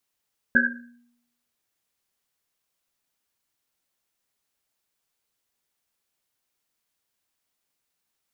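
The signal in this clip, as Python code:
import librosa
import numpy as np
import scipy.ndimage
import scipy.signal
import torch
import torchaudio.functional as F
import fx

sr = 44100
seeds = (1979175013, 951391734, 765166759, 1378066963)

y = fx.risset_drum(sr, seeds[0], length_s=1.1, hz=240.0, decay_s=0.8, noise_hz=1600.0, noise_width_hz=130.0, noise_pct=70)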